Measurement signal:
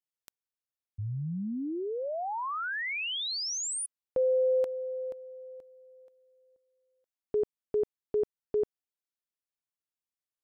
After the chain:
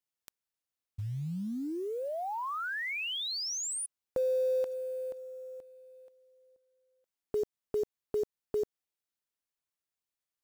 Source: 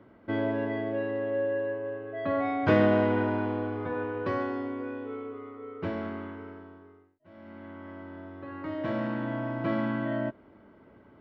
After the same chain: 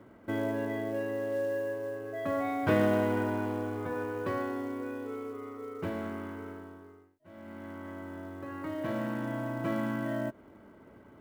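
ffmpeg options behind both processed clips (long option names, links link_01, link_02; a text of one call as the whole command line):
ffmpeg -i in.wav -filter_complex "[0:a]asplit=2[link_01][link_02];[link_02]acompressor=threshold=-41dB:ratio=16:attack=42:release=112:knee=1:detection=rms,volume=-1dB[link_03];[link_01][link_03]amix=inputs=2:normalize=0,acrusher=bits=7:mode=log:mix=0:aa=0.000001,volume=-4.5dB" out.wav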